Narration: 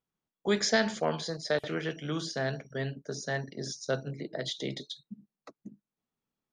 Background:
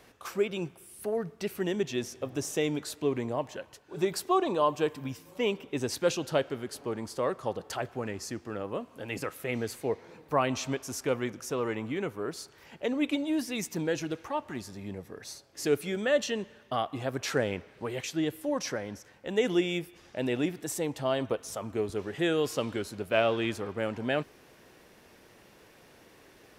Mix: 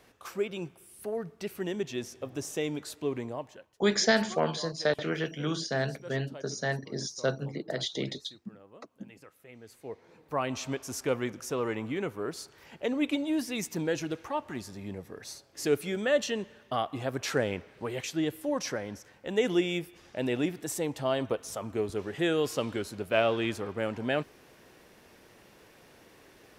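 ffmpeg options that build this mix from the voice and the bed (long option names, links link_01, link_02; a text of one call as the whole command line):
ffmpeg -i stem1.wav -i stem2.wav -filter_complex "[0:a]adelay=3350,volume=2dB[link_01];[1:a]volume=15.5dB,afade=type=out:start_time=3.2:duration=0.55:silence=0.16788,afade=type=in:start_time=9.61:duration=1.38:silence=0.11885[link_02];[link_01][link_02]amix=inputs=2:normalize=0" out.wav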